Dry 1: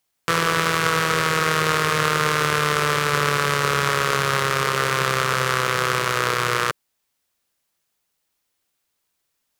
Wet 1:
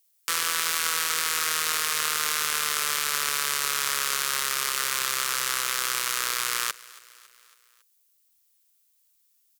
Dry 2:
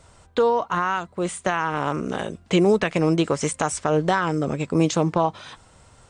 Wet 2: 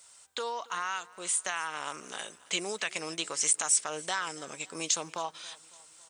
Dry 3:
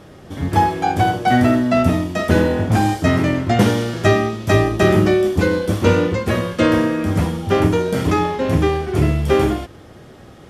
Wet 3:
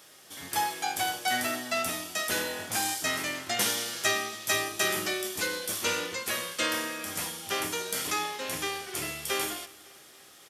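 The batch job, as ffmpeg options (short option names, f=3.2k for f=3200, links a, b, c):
-af "aderivative,aecho=1:1:277|554|831|1108:0.0794|0.0453|0.0258|0.0147,asoftclip=type=tanh:threshold=-9dB,volume=5dB"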